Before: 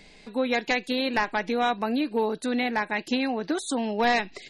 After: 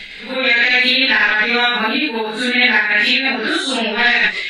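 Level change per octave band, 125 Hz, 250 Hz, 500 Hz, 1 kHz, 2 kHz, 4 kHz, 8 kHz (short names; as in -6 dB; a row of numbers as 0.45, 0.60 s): n/a, +4.5 dB, +4.0 dB, +5.0 dB, +17.5 dB, +17.5 dB, +5.5 dB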